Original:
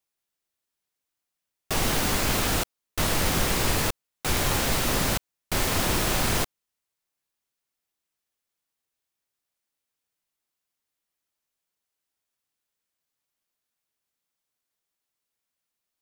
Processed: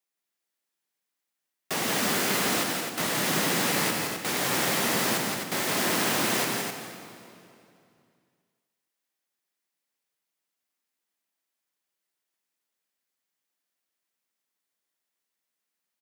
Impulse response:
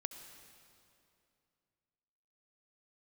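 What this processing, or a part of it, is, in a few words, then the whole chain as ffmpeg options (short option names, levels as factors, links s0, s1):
stadium PA: -filter_complex "[0:a]highpass=f=160:w=0.5412,highpass=f=160:w=1.3066,equalizer=f=1900:t=o:w=0.32:g=3.5,aecho=1:1:169.1|259.5:0.562|0.501[s0];[1:a]atrim=start_sample=2205[s1];[s0][s1]afir=irnorm=-1:irlink=0"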